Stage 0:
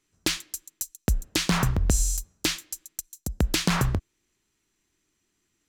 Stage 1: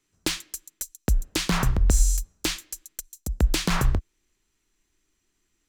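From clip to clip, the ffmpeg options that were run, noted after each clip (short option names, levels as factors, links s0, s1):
-filter_complex "[0:a]asubboost=boost=4:cutoff=57,acrossover=split=560|1200[s0][s1][s2];[s2]aeval=exprs='clip(val(0),-1,0.0562)':c=same[s3];[s0][s1][s3]amix=inputs=3:normalize=0"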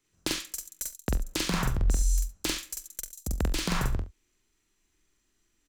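-filter_complex "[0:a]acompressor=threshold=0.0562:ratio=3,asplit=2[s0][s1];[s1]adelay=45,volume=0.631[s2];[s0][s2]amix=inputs=2:normalize=0,asplit=2[s3][s4];[s4]aecho=0:1:45|70:0.2|0.188[s5];[s3][s5]amix=inputs=2:normalize=0,volume=0.75"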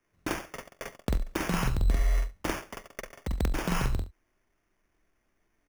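-af "highshelf=f=8100:g=-8,acrusher=samples=11:mix=1:aa=0.000001"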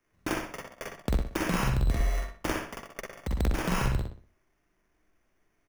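-filter_complex "[0:a]asplit=2[s0][s1];[s1]adelay=61,lowpass=f=3600:p=1,volume=0.668,asplit=2[s2][s3];[s3]adelay=61,lowpass=f=3600:p=1,volume=0.37,asplit=2[s4][s5];[s5]adelay=61,lowpass=f=3600:p=1,volume=0.37,asplit=2[s6][s7];[s7]adelay=61,lowpass=f=3600:p=1,volume=0.37,asplit=2[s8][s9];[s9]adelay=61,lowpass=f=3600:p=1,volume=0.37[s10];[s0][s2][s4][s6][s8][s10]amix=inputs=6:normalize=0"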